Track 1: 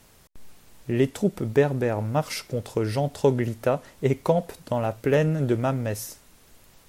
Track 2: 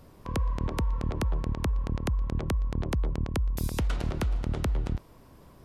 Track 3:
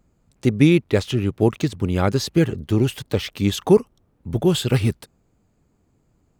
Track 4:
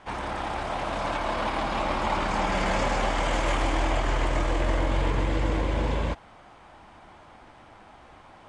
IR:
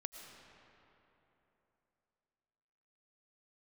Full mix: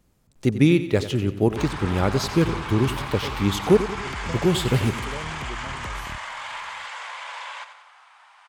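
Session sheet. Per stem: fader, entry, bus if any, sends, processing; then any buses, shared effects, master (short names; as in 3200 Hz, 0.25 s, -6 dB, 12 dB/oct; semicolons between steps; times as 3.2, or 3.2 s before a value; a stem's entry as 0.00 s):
-16.5 dB, 0.00 s, no send, no echo send, dry
-9.0 dB, 1.20 s, send -21 dB, no echo send, dry
-3.5 dB, 0.00 s, send -14 dB, echo send -12 dB, dry
0.0 dB, 1.50 s, send -9 dB, echo send -9 dB, inverse Chebyshev high-pass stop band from 280 Hz, stop band 60 dB; limiter -26.5 dBFS, peak gain reduction 8.5 dB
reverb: on, RT60 3.3 s, pre-delay 70 ms
echo: feedback echo 91 ms, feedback 48%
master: dry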